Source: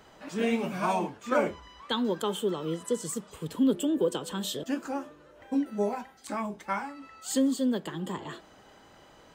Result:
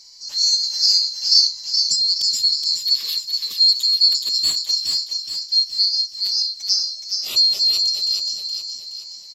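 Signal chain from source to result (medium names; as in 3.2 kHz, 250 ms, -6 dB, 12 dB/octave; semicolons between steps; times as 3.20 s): split-band scrambler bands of 4 kHz; peaking EQ 5.6 kHz +13 dB 1.4 oct; feedback delay 421 ms, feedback 47%, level -5 dB; trim -1 dB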